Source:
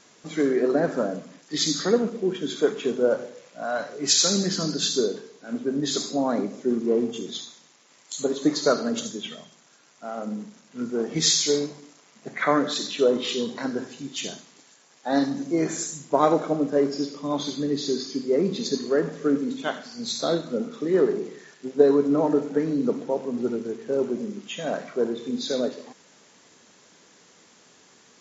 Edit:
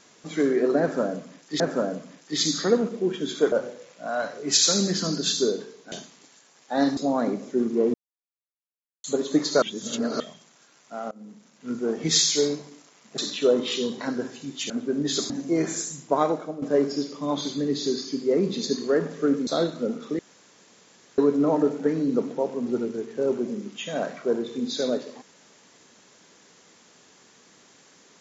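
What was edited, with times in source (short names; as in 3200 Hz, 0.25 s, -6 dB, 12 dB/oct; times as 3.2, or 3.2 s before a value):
0.81–1.6 loop, 2 plays
2.73–3.08 cut
5.48–6.08 swap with 14.27–15.32
7.05–8.15 mute
8.73–9.31 reverse
10.22–10.84 fade in, from -23 dB
12.29–12.75 cut
16.01–16.64 fade out, to -13.5 dB
19.49–20.18 cut
20.9–21.89 room tone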